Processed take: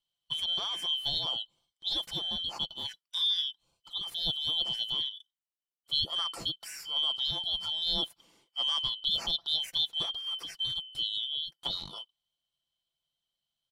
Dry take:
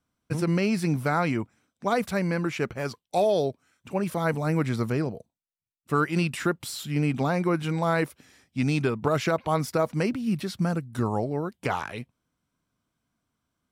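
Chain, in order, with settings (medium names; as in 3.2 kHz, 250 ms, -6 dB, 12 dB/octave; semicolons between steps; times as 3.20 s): four frequency bands reordered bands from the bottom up 2413; comb 5.9 ms, depth 38%; trim -8 dB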